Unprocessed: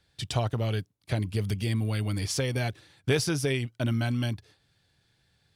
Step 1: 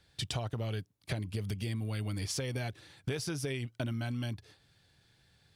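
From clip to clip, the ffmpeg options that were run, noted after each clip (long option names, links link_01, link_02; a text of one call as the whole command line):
ffmpeg -i in.wav -af "acompressor=threshold=-35dB:ratio=6,volume=2dB" out.wav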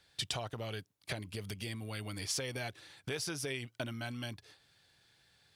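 ffmpeg -i in.wav -af "lowshelf=frequency=320:gain=-11,volume=1.5dB" out.wav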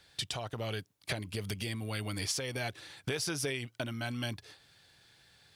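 ffmpeg -i in.wav -af "alimiter=level_in=3.5dB:limit=-24dB:level=0:latency=1:release=490,volume=-3.5dB,volume=5.5dB" out.wav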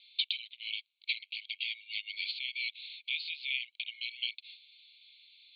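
ffmpeg -i in.wav -af "asuperpass=centerf=3100:order=20:qfactor=1.4,volume=7dB" out.wav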